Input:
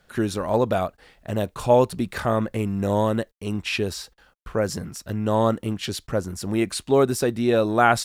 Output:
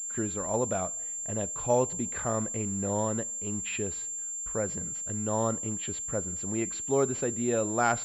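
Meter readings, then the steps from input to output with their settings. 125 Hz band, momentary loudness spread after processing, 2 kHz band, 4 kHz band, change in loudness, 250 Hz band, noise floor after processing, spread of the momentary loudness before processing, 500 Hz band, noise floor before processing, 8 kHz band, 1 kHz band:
−8.5 dB, 6 LU, −9.0 dB, −14.0 dB, −6.0 dB, −8.5 dB, −36 dBFS, 11 LU, −8.5 dB, −62 dBFS, +8.5 dB, −8.5 dB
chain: coupled-rooms reverb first 0.6 s, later 2 s, from −16 dB, DRR 18.5 dB
switching amplifier with a slow clock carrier 7,300 Hz
level −8.5 dB

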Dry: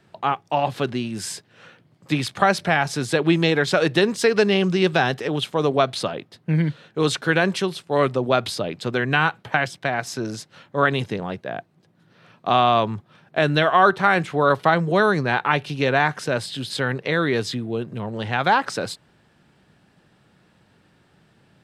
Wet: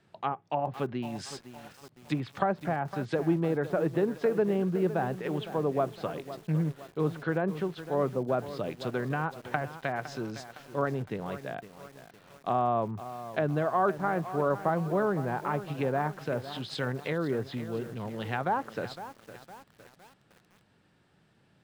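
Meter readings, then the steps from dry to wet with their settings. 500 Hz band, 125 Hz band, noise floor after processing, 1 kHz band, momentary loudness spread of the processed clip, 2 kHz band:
−8.0 dB, −7.5 dB, −66 dBFS, −10.5 dB, 12 LU, −16.0 dB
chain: treble cut that deepens with the level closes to 950 Hz, closed at −17.5 dBFS
feedback echo at a low word length 510 ms, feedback 55%, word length 6 bits, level −12.5 dB
level −8 dB

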